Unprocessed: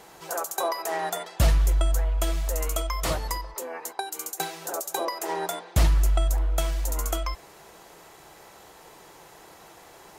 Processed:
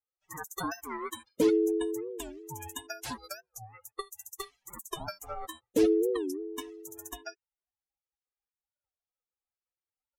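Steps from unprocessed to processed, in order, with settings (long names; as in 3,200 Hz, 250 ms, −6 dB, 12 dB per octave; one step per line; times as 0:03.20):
spectral dynamics exaggerated over time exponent 3
ring modulation 380 Hz
wow of a warped record 45 rpm, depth 250 cents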